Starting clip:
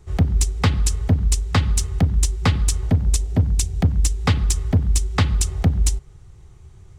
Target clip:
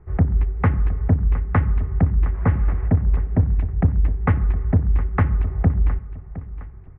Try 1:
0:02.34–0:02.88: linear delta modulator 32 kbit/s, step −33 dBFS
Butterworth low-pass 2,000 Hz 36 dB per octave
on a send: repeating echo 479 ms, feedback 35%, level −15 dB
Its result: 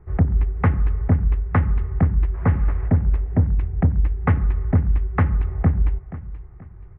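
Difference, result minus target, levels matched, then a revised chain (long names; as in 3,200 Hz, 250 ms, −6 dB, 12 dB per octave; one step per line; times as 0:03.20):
echo 234 ms early
0:02.34–0:02.88: linear delta modulator 32 kbit/s, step −33 dBFS
Butterworth low-pass 2,000 Hz 36 dB per octave
on a send: repeating echo 713 ms, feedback 35%, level −15 dB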